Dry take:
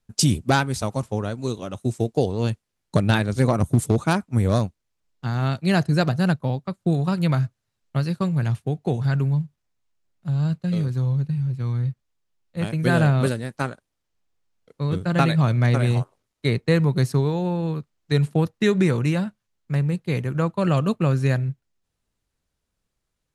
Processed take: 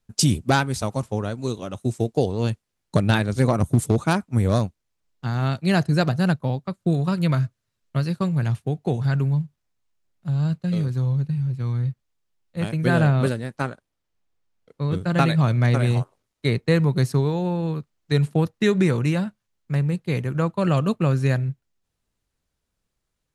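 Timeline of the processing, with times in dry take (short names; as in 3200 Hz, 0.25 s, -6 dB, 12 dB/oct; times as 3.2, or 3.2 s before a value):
6.74–8.02 notch 800 Hz, Q 7.3
12.77–14.94 high shelf 4700 Hz -5 dB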